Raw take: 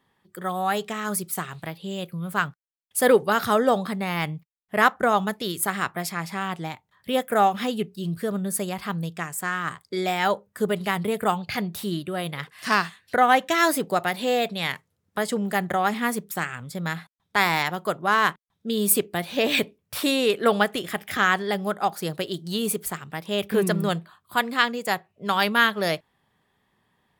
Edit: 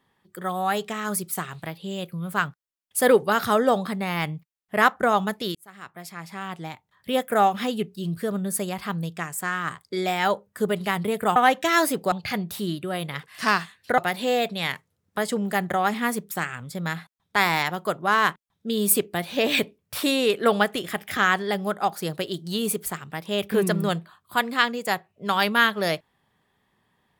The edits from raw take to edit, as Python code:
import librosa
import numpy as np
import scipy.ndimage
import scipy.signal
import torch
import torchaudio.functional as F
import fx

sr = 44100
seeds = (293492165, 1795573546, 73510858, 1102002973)

y = fx.edit(x, sr, fx.fade_in_span(start_s=5.55, length_s=1.58),
    fx.move(start_s=13.22, length_s=0.76, to_s=11.36), tone=tone)